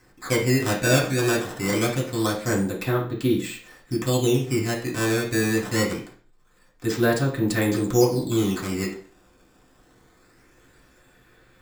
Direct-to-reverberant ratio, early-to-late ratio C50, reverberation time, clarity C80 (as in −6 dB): −4.0 dB, 7.5 dB, 0.45 s, 12.0 dB